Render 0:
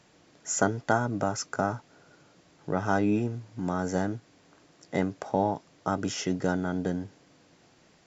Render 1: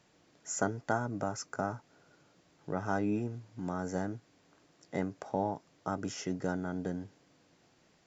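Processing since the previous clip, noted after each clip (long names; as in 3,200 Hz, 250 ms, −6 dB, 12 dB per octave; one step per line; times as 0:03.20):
dynamic equaliser 3,400 Hz, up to −5 dB, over −52 dBFS, Q 1.7
level −6.5 dB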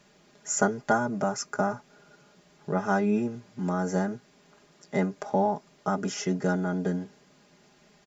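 comb filter 4.9 ms, depth 85%
level +5 dB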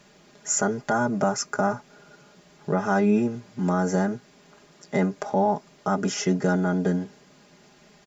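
brickwall limiter −17.5 dBFS, peak gain reduction 8 dB
level +5 dB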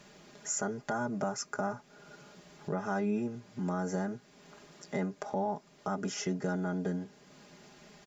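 downward compressor 1.5 to 1, threshold −46 dBFS, peak gain reduction 10.5 dB
level −1 dB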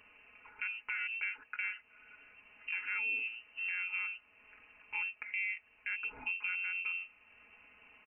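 voice inversion scrambler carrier 2,900 Hz
level −4.5 dB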